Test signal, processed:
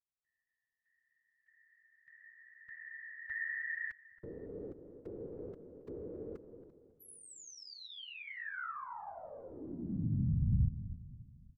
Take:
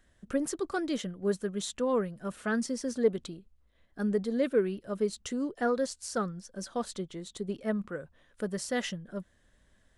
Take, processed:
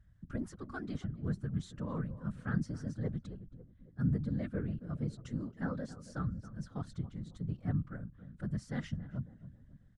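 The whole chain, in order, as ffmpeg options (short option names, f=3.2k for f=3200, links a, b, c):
-filter_complex "[0:a]asplit=2[a][b];[b]adelay=274,lowpass=f=1k:p=1,volume=-13.5dB,asplit=2[c][d];[d]adelay=274,lowpass=f=1k:p=1,volume=0.48,asplit=2[e][f];[f]adelay=274,lowpass=f=1k:p=1,volume=0.48,asplit=2[g][h];[h]adelay=274,lowpass=f=1k:p=1,volume=0.48,asplit=2[i][j];[j]adelay=274,lowpass=f=1k:p=1,volume=0.48[k];[a][c][e][g][i][k]amix=inputs=6:normalize=0,afftfilt=real='hypot(re,im)*cos(2*PI*random(0))':imag='hypot(re,im)*sin(2*PI*random(1))':win_size=512:overlap=0.75,firequalizer=gain_entry='entry(110,0);entry(390,-23);entry(1400,-13);entry(2600,-21);entry(4400,-21);entry(11000,-29)':delay=0.05:min_phase=1,volume=11dB"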